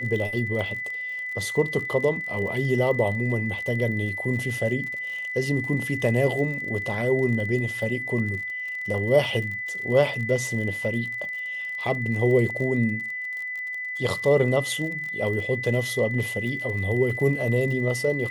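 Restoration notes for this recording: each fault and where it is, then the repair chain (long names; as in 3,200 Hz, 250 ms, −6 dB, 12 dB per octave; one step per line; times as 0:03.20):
surface crackle 45 per second −33 dBFS
whistle 2,000 Hz −29 dBFS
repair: click removal
notch filter 2,000 Hz, Q 30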